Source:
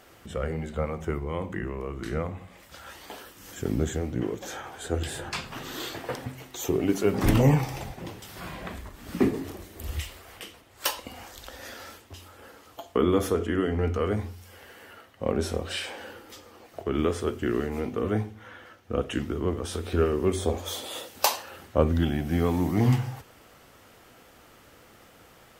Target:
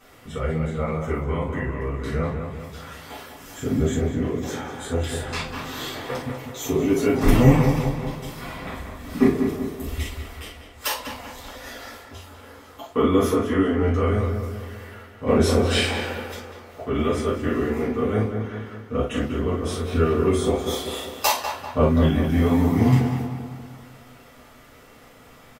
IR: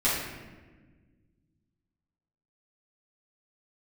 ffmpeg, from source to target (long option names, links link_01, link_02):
-filter_complex "[0:a]asettb=1/sr,asplit=3[link_01][link_02][link_03];[link_01]atrim=end=15.274[link_04];[link_02]atrim=start=15.27:end=16.34,asetpts=PTS-STARTPTS,afade=type=in:duration=0.004:curve=qsin,afade=type=out:start_time=1.066:duration=0.004:curve=qsin,acontrast=52[link_05];[link_03]atrim=start=16.336[link_06];[link_04][link_05]acrossfade=duration=0.004:curve1=hsin:curve2=qsin[link_07];[link_07][link_06]acrossfade=duration=0.004:curve1=qsin:curve2=hsin,asplit=2[link_08][link_09];[link_09]adelay=195,lowpass=frequency=2400:poles=1,volume=-6dB,asplit=2[link_10][link_11];[link_11]adelay=195,lowpass=frequency=2400:poles=1,volume=0.52,asplit=2[link_12][link_13];[link_13]adelay=195,lowpass=frequency=2400:poles=1,volume=0.52,asplit=2[link_14][link_15];[link_15]adelay=195,lowpass=frequency=2400:poles=1,volume=0.52,asplit=2[link_16][link_17];[link_17]adelay=195,lowpass=frequency=2400:poles=1,volume=0.52,asplit=2[link_18][link_19];[link_19]adelay=195,lowpass=frequency=2400:poles=1,volume=0.52[link_20];[link_08][link_10][link_12][link_14][link_16][link_18][link_20]amix=inputs=7:normalize=0[link_21];[1:a]atrim=start_sample=2205,atrim=end_sample=3087[link_22];[link_21][link_22]afir=irnorm=-1:irlink=0,volume=-6.5dB"